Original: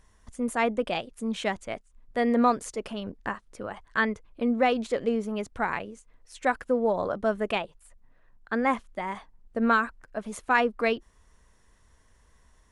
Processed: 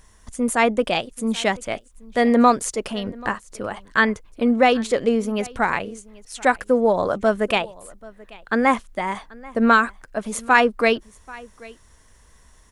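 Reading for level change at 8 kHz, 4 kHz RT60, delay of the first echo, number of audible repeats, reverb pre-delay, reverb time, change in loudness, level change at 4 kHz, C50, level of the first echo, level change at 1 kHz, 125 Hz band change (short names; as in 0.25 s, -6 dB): +12.5 dB, none, 0.785 s, 1, none, none, +7.5 dB, +9.5 dB, none, -22.5 dB, +7.5 dB, +7.0 dB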